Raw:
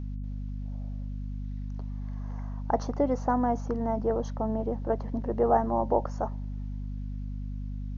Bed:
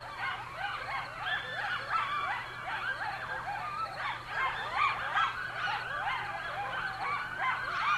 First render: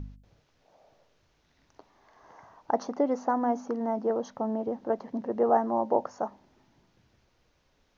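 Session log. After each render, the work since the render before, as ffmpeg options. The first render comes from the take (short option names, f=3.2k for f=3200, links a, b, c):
-af "bandreject=f=50:t=h:w=4,bandreject=f=100:t=h:w=4,bandreject=f=150:t=h:w=4,bandreject=f=200:t=h:w=4,bandreject=f=250:t=h:w=4"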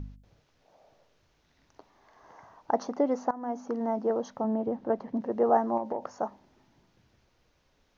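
-filter_complex "[0:a]asettb=1/sr,asplit=3[a][b][c];[a]atrim=end=4.444[d];[b]atrim=start=4.44:end=5.21,asetpts=PTS-STARTPTS,afade=t=in:d=0.004:c=qsin,afade=t=out:st=0.766:d=0.004:c=qsin,bass=f=250:g=4,treble=f=4k:g=-7[e];[c]atrim=start=5.206[f];[d][e]acrossfade=d=0.004:c1=hsin:c2=qsin[g];[g][f]acrossfade=d=0.004:c1=qsin:c2=hsin,asettb=1/sr,asplit=3[h][i][j];[h]atrim=end=5.774[k];[i]atrim=start=5.77:end=6.17,asetpts=PTS-STARTPTS,afade=t=in:d=0.004:c=qsin,afade=t=out:st=0.396:d=0.004:c=qsin,acompressor=threshold=-27dB:ratio=6:attack=3.2:release=140:knee=1:detection=peak[l];[j]atrim=start=6.166[m];[k][l]acrossfade=d=0.004:c1=hsin:c2=qsin[n];[n][m]acrossfade=d=0.004:c1=qsin:c2=hsin,asplit=2[o][p];[o]atrim=end=3.31,asetpts=PTS-STARTPTS,afade=t=out:st=3.306:d=0.004:c=hsin:silence=0.11885[q];[p]atrim=start=3.31,asetpts=PTS-STARTPTS,afade=t=in:d=0.45:silence=0.11885[r];[q][r]concat=n=2:v=0:a=1"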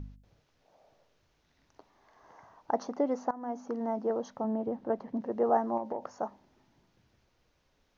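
-af "volume=-3dB"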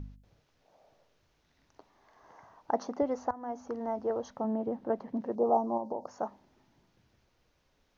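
-filter_complex "[0:a]asettb=1/sr,asplit=3[a][b][c];[a]atrim=end=3.024[d];[b]atrim=start=3.02:end=4.31,asetpts=PTS-STARTPTS,afade=t=in:d=0.004:c=qsin,afade=t=out:st=1.286:d=0.004:c=qsin,lowshelf=f=120:t=q:w=3:g=11.5[e];[c]atrim=start=4.306[f];[d][e]acrossfade=d=0.004:c1=hsin:c2=qsin[g];[g][f]acrossfade=d=0.004:c1=qsin:c2=hsin,asettb=1/sr,asplit=3[h][i][j];[h]atrim=end=5.354[k];[i]atrim=start=5.35:end=6.08,asetpts=PTS-STARTPTS,afade=t=in:d=0.004:c=qsin,afade=t=out:st=0.726:d=0.004:c=qsin,asuperstop=centerf=2200:order=8:qfactor=0.68[l];[j]atrim=start=6.076[m];[k][l]acrossfade=d=0.004:c1=hsin:c2=qsin[n];[n][m]acrossfade=d=0.004:c1=qsin:c2=hsin"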